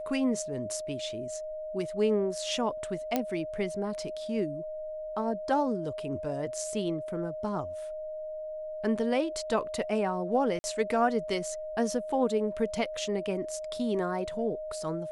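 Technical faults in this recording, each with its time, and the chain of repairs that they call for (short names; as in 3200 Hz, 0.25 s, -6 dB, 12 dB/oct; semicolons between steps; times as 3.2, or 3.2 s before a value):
tone 620 Hz -35 dBFS
3.16 pop -13 dBFS
10.59–10.64 gap 50 ms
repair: de-click; notch 620 Hz, Q 30; interpolate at 10.59, 50 ms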